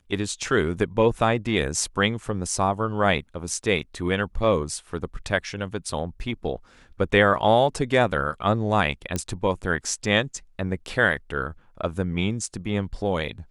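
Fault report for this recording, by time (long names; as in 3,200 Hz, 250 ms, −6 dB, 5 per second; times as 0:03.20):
0:09.16: click −12 dBFS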